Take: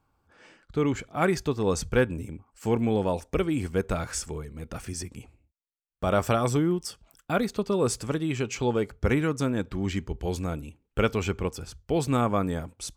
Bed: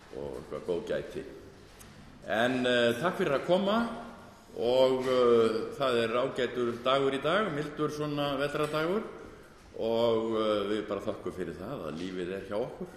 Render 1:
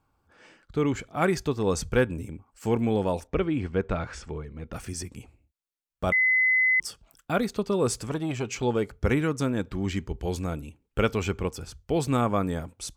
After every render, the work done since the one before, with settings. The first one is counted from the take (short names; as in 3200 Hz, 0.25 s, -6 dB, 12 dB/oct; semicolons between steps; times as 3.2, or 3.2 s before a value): 3.27–4.73 LPF 3300 Hz; 6.12–6.8 bleep 2030 Hz -18.5 dBFS; 8.09–8.63 core saturation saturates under 470 Hz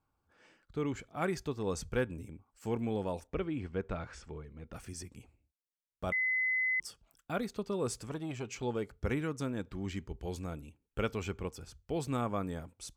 gain -9.5 dB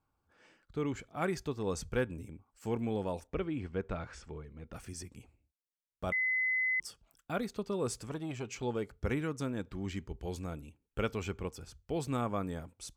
nothing audible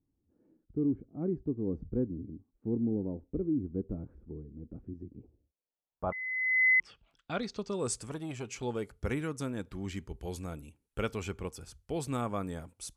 low-pass sweep 300 Hz -> 11000 Hz, 5.04–8.14